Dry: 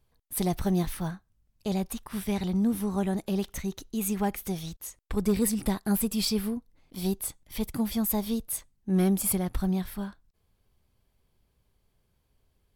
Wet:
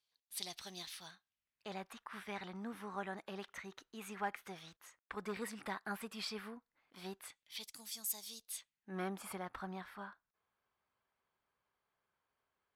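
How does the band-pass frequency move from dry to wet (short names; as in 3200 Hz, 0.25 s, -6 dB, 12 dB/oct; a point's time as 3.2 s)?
band-pass, Q 1.6
1.07 s 4200 Hz
1.74 s 1500 Hz
7.17 s 1500 Hz
7.78 s 6500 Hz
8.33 s 6500 Hz
8.98 s 1300 Hz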